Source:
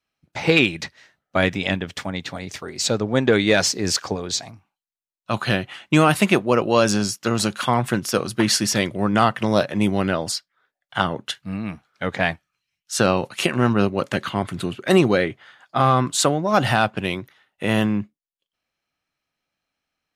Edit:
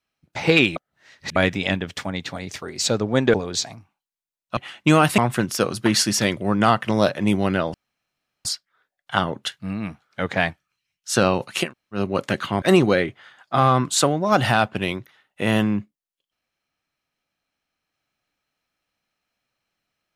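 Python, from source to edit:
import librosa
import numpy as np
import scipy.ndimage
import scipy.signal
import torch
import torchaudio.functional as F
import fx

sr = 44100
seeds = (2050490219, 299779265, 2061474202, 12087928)

y = fx.edit(x, sr, fx.reverse_span(start_s=0.76, length_s=0.6),
    fx.cut(start_s=3.34, length_s=0.76),
    fx.cut(start_s=5.33, length_s=0.3),
    fx.cut(start_s=6.24, length_s=1.48),
    fx.insert_room_tone(at_s=10.28, length_s=0.71),
    fx.room_tone_fill(start_s=13.49, length_s=0.33, crossfade_s=0.16),
    fx.cut(start_s=14.45, length_s=0.39), tone=tone)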